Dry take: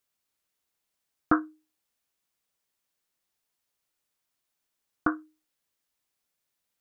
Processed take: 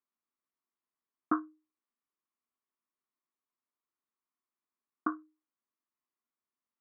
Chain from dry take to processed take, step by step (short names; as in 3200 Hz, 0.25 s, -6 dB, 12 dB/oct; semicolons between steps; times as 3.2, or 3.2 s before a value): speaker cabinet 240–2000 Hz, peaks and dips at 240 Hz +9 dB, 360 Hz +4 dB, 520 Hz -8 dB, 780 Hz -4 dB, 1100 Hz +8 dB, 1600 Hz -5 dB; gain -8.5 dB